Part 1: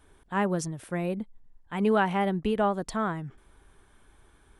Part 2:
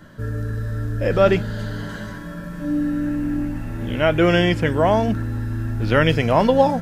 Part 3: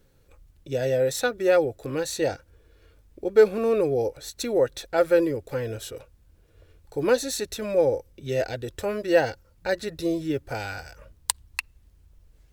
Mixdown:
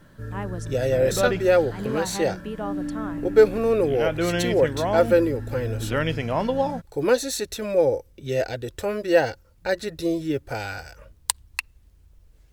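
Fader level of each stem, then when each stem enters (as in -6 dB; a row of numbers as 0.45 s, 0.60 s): -6.5 dB, -8.0 dB, +1.5 dB; 0.00 s, 0.00 s, 0.00 s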